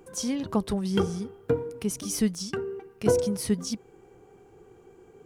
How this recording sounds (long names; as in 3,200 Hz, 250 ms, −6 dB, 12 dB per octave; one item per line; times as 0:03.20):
background noise floor −56 dBFS
spectral slope −5.0 dB per octave